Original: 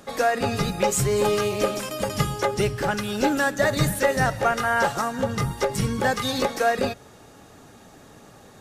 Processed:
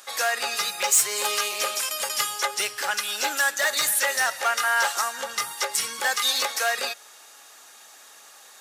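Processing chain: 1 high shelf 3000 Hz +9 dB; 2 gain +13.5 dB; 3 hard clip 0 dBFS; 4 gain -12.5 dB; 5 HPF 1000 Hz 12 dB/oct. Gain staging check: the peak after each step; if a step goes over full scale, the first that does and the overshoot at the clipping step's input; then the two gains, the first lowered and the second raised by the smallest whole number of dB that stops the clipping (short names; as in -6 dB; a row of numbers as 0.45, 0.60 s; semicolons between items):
-4.5, +9.0, 0.0, -12.5, -9.0 dBFS; step 2, 9.0 dB; step 2 +4.5 dB, step 4 -3.5 dB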